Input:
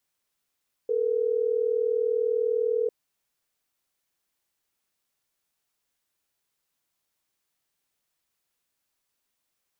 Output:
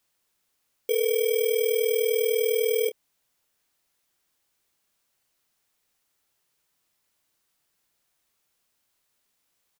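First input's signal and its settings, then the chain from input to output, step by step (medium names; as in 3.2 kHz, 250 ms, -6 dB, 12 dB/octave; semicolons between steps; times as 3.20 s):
call progress tone ringback tone, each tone -25 dBFS
bit-reversed sample order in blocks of 16 samples; in parallel at -2 dB: peak limiter -27 dBFS; on the sum: doubling 28 ms -12.5 dB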